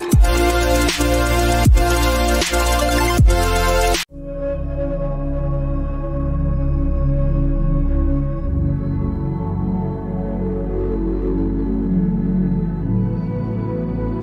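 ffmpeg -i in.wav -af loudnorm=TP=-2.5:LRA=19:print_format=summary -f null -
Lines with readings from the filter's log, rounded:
Input Integrated:    -19.5 LUFS
Input True Peak:      -4.5 dBTP
Input LRA:             5.7 LU
Input Threshold:     -29.5 LUFS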